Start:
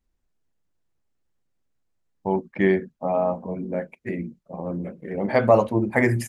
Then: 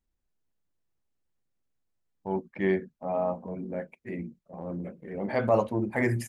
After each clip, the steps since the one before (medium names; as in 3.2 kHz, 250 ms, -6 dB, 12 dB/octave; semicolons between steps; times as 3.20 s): transient shaper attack -5 dB, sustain -1 dB; trim -5 dB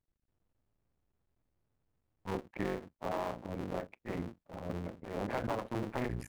cycle switcher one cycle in 2, muted; treble shelf 3.9 kHz -11 dB; compression 10:1, threshold -32 dBFS, peak gain reduction 13 dB; trim +1 dB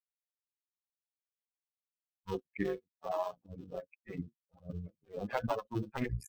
expander on every frequency bin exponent 3; trim +6.5 dB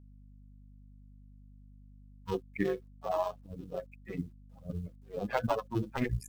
companded quantiser 8-bit; hum 50 Hz, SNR 17 dB; trim +3.5 dB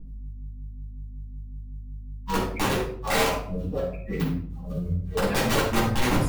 harmonic tremolo 5.4 Hz, depth 70%, crossover 850 Hz; integer overflow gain 29.5 dB; reverberation RT60 0.55 s, pre-delay 4 ms, DRR -8.5 dB; trim +2.5 dB